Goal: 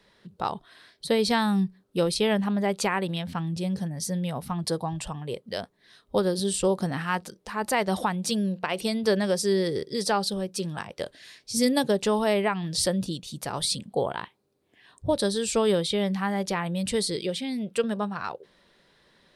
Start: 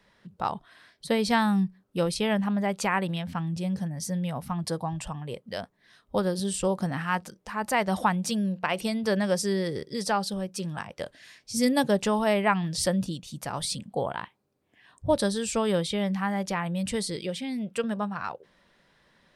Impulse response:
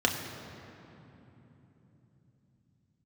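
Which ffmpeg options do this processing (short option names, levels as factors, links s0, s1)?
-af "alimiter=limit=0.178:level=0:latency=1:release=281,equalizer=f=400:t=o:w=0.67:g=6,equalizer=f=4000:t=o:w=0.67:g=6,equalizer=f=10000:t=o:w=0.67:g=4"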